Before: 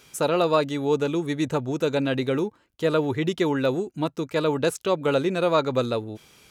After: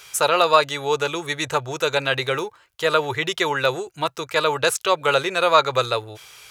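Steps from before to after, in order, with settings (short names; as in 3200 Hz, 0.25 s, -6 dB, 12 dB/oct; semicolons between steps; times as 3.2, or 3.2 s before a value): EQ curve 130 Hz 0 dB, 230 Hz -17 dB, 390 Hz 0 dB, 1200 Hz +11 dB; gain -1 dB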